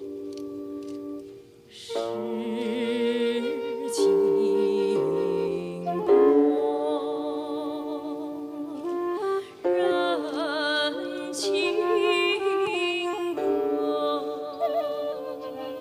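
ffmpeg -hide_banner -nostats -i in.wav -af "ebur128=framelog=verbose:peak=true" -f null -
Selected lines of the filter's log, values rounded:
Integrated loudness:
  I:         -26.2 LUFS
  Threshold: -36.4 LUFS
Loudness range:
  LRA:         6.3 LU
  Threshold: -45.8 LUFS
  LRA low:   -29.6 LUFS
  LRA high:  -23.2 LUFS
True peak:
  Peak:       -8.6 dBFS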